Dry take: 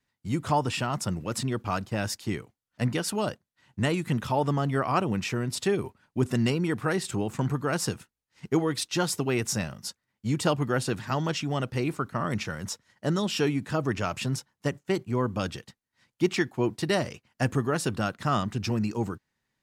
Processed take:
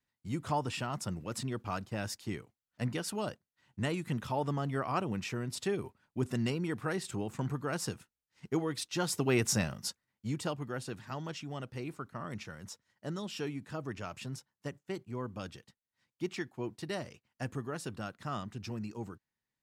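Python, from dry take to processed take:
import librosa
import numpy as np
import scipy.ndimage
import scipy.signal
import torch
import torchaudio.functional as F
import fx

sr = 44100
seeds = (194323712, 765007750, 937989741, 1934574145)

y = fx.gain(x, sr, db=fx.line((8.94, -7.5), (9.34, -1.0), (9.87, -1.0), (10.55, -12.0)))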